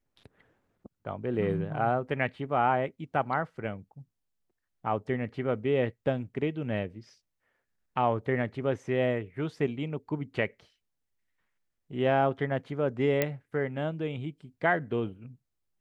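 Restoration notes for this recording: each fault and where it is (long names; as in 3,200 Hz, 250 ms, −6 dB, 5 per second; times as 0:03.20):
0:13.22: click −11 dBFS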